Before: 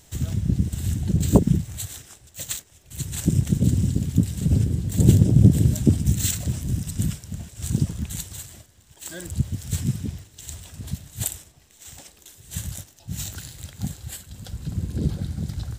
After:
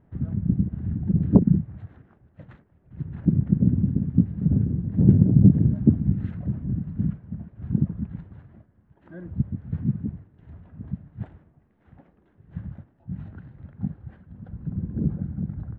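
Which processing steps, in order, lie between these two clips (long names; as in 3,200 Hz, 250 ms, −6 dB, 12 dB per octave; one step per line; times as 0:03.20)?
low-pass filter 1,600 Hz 24 dB per octave
parametric band 200 Hz +10.5 dB 1.5 octaves
level −7.5 dB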